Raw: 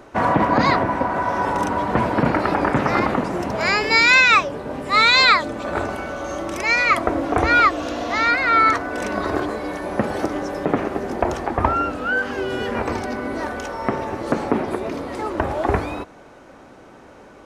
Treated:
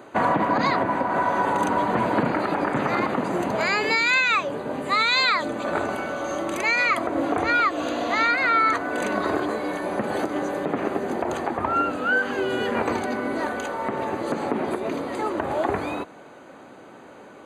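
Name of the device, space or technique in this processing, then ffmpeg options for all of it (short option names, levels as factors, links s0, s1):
PA system with an anti-feedback notch: -af "highpass=140,asuperstop=centerf=5400:order=12:qfactor=5.1,alimiter=limit=0.251:level=0:latency=1:release=135"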